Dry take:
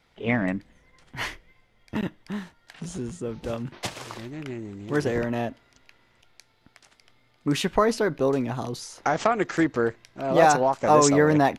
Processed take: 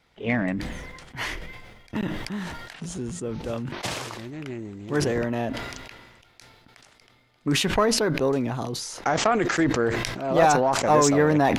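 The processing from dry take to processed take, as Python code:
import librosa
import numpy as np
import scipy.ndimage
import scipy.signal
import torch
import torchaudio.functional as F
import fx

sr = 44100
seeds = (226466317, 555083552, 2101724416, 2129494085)

y = fx.diode_clip(x, sr, knee_db=-8.0)
y = fx.sustainer(y, sr, db_per_s=37.0)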